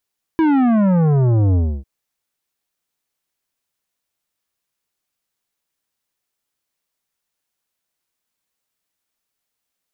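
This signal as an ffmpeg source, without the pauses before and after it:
-f lavfi -i "aevalsrc='0.224*clip((1.45-t)/0.29,0,1)*tanh(3.98*sin(2*PI*330*1.45/log(65/330)*(exp(log(65/330)*t/1.45)-1)))/tanh(3.98)':d=1.45:s=44100"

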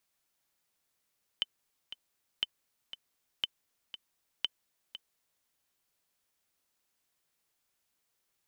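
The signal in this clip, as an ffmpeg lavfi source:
-f lavfi -i "aevalsrc='pow(10,(-16-13*gte(mod(t,2*60/119),60/119))/20)*sin(2*PI*3050*mod(t,60/119))*exp(-6.91*mod(t,60/119)/0.03)':d=4.03:s=44100"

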